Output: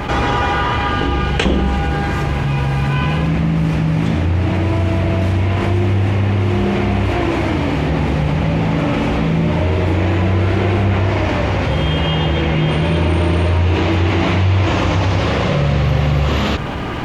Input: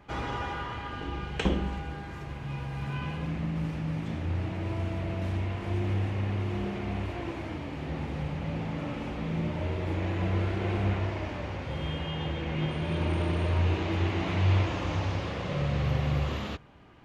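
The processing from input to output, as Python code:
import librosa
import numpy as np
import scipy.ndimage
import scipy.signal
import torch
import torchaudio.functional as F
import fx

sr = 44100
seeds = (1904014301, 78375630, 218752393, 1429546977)

y = fx.env_flatten(x, sr, amount_pct=70)
y = y * 10.0 ** (8.5 / 20.0)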